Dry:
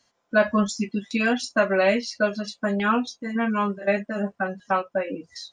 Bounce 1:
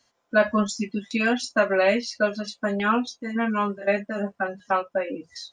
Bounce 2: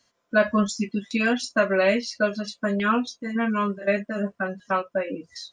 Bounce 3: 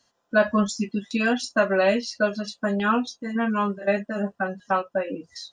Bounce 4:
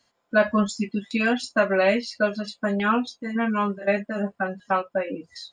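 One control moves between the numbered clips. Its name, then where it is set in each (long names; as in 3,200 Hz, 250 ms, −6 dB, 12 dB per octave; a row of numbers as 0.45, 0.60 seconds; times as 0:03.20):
notch filter, centre frequency: 180, 810, 2,200, 5,900 Hertz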